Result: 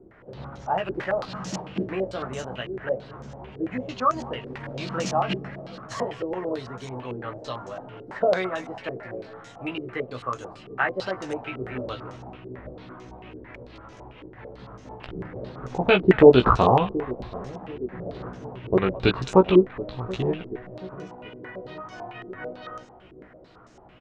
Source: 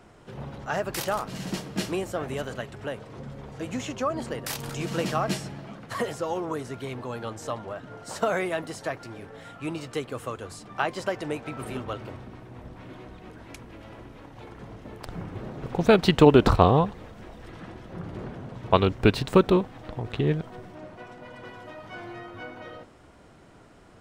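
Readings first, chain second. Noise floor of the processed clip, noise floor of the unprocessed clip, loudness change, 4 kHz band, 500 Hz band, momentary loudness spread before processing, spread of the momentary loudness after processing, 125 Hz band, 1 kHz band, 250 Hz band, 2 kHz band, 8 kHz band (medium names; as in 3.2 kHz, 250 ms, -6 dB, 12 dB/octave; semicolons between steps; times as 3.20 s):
-49 dBFS, -52 dBFS, +1.5 dB, -0.5 dB, +3.0 dB, 24 LU, 22 LU, -1.5 dB, +2.0 dB, +1.0 dB, +2.5 dB, no reading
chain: doubling 16 ms -4 dB; two-band feedback delay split 700 Hz, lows 731 ms, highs 213 ms, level -16 dB; step-sequenced low-pass 9 Hz 380–6300 Hz; trim -3.5 dB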